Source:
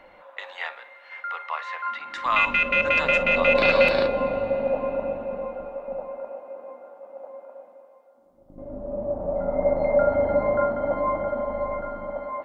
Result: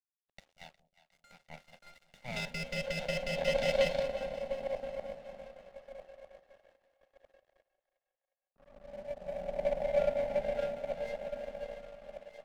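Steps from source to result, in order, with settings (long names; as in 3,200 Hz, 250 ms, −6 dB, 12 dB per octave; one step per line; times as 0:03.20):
lower of the sound and its delayed copy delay 1.4 ms
low-pass filter 2,500 Hz 6 dB per octave
power curve on the samples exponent 1.4
phaser with its sweep stopped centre 320 Hz, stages 6
dead-zone distortion −55.5 dBFS
on a send: echo with a time of its own for lows and highs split 620 Hz, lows 181 ms, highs 359 ms, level −16 dB
on the sum: level −4.5 dB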